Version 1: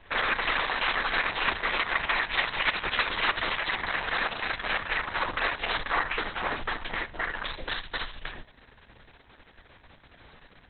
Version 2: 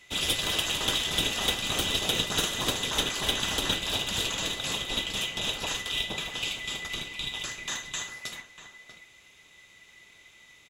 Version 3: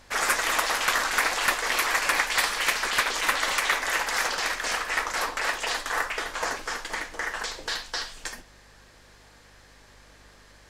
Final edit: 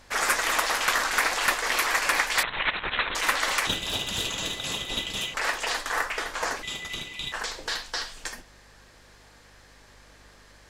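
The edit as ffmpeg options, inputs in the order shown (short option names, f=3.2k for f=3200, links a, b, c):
-filter_complex "[1:a]asplit=2[a][b];[2:a]asplit=4[c][d][e][f];[c]atrim=end=2.432[g];[0:a]atrim=start=2.428:end=3.152[h];[d]atrim=start=3.148:end=3.672[i];[a]atrim=start=3.668:end=5.342[j];[e]atrim=start=5.338:end=6.632[k];[b]atrim=start=6.628:end=7.322[l];[f]atrim=start=7.318[m];[g][h]acrossfade=d=0.004:c1=hsin:c2=hsin[n];[n][i]acrossfade=d=0.004:c1=hsin:c2=hsin[o];[o][j]acrossfade=d=0.004:c1=hsin:c2=hsin[p];[p][k]acrossfade=d=0.004:c1=hsin:c2=hsin[q];[q][l]acrossfade=d=0.004:c1=hsin:c2=hsin[r];[r][m]acrossfade=d=0.004:c1=hsin:c2=hsin"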